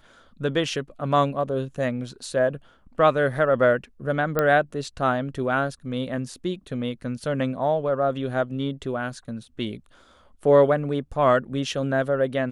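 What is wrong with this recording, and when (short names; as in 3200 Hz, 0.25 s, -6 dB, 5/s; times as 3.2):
4.39 pop -9 dBFS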